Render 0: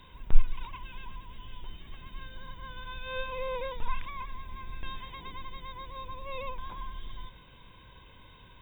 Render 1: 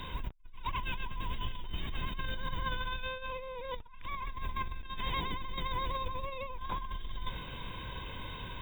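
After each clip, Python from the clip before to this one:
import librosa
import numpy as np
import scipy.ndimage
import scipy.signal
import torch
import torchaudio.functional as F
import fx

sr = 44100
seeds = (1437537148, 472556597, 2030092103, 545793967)

y = fx.over_compress(x, sr, threshold_db=-43.0, ratio=-1.0)
y = y * librosa.db_to_amplitude(2.0)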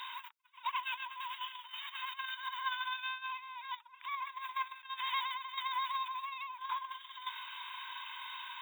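y = fx.brickwall_highpass(x, sr, low_hz=850.0)
y = y * librosa.db_to_amplitude(1.5)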